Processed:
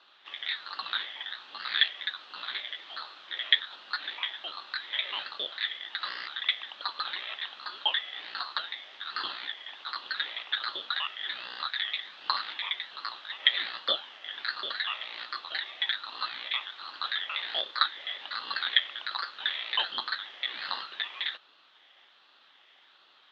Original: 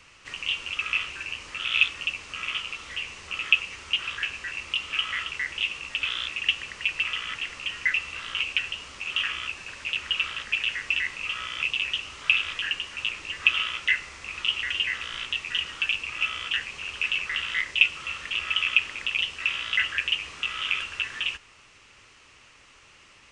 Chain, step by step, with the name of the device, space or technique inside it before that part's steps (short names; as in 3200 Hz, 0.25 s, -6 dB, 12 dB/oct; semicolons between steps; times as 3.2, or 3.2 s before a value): voice changer toy (ring modulator with a swept carrier 1100 Hz, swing 40%, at 1.3 Hz; speaker cabinet 450–3600 Hz, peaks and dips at 460 Hz -7 dB, 680 Hz -4 dB, 1000 Hz -4 dB, 1500 Hz -3 dB, 2300 Hz -5 dB, 3300 Hz +5 dB); low shelf 380 Hz -5 dB